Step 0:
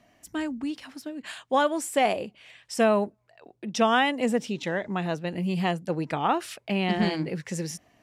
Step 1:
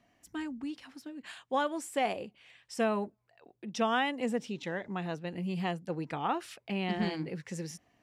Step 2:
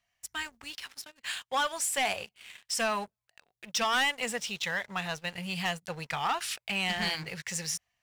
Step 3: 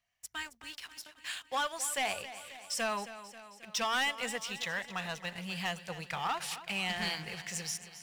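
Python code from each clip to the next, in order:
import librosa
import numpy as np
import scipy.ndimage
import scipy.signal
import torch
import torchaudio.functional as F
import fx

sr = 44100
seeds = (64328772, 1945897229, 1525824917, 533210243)

y1 = fx.high_shelf(x, sr, hz=7500.0, db=-4.5)
y1 = fx.notch(y1, sr, hz=620.0, q=12.0)
y1 = F.gain(torch.from_numpy(y1), -7.0).numpy()
y2 = fx.tone_stack(y1, sr, knobs='10-0-10')
y2 = fx.leveller(y2, sr, passes=3)
y2 = F.gain(torch.from_numpy(y2), 4.0).numpy()
y3 = fx.echo_feedback(y2, sr, ms=269, feedback_pct=60, wet_db=-14)
y3 = F.gain(torch.from_numpy(y3), -4.0).numpy()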